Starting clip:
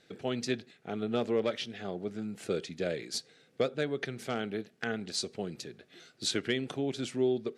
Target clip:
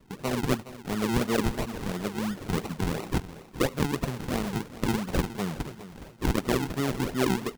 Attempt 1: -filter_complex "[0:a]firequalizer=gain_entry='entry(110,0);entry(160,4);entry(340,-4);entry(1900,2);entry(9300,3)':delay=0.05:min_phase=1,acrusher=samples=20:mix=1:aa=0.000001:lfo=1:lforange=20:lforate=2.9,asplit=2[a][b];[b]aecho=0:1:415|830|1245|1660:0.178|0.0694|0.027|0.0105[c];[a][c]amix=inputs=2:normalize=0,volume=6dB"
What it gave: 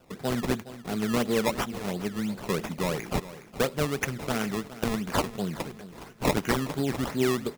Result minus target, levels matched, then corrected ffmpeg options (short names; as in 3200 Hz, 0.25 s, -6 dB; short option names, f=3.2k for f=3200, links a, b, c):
decimation with a swept rate: distortion -9 dB
-filter_complex "[0:a]firequalizer=gain_entry='entry(110,0);entry(160,4);entry(340,-4);entry(1900,2);entry(9300,3)':delay=0.05:min_phase=1,acrusher=samples=52:mix=1:aa=0.000001:lfo=1:lforange=52:lforate=2.9,asplit=2[a][b];[b]aecho=0:1:415|830|1245|1660:0.178|0.0694|0.027|0.0105[c];[a][c]amix=inputs=2:normalize=0,volume=6dB"